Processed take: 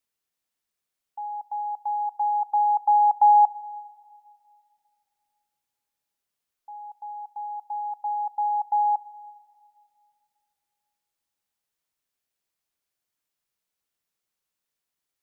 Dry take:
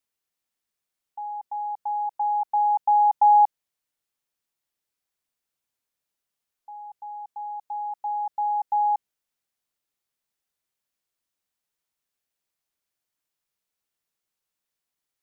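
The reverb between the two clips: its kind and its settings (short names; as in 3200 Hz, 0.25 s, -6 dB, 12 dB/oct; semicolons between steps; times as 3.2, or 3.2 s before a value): plate-style reverb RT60 2.4 s, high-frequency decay 0.95×, pre-delay 0 ms, DRR 17.5 dB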